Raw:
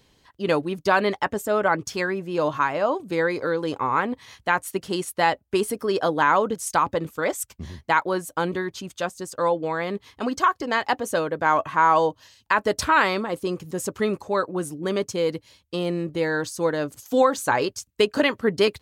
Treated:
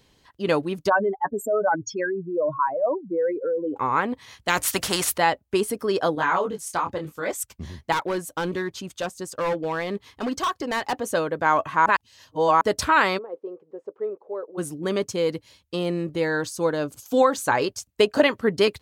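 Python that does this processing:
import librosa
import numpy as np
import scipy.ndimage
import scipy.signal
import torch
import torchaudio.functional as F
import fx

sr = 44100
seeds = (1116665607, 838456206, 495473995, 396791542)

y = fx.spec_expand(x, sr, power=2.9, at=(0.88, 3.76), fade=0.02)
y = fx.spectral_comp(y, sr, ratio=2.0, at=(4.48, 5.18))
y = fx.detune_double(y, sr, cents=24, at=(6.15, 7.31))
y = fx.overload_stage(y, sr, gain_db=21.0, at=(7.92, 10.93))
y = fx.ladder_bandpass(y, sr, hz=500.0, resonance_pct=60, at=(13.17, 14.57), fade=0.02)
y = fx.peak_eq(y, sr, hz=1900.0, db=-8.5, octaves=0.2, at=(16.52, 17.14))
y = fx.peak_eq(y, sr, hz=690.0, db=7.0, octaves=0.61, at=(17.71, 18.27))
y = fx.edit(y, sr, fx.reverse_span(start_s=11.86, length_s=0.75), tone=tone)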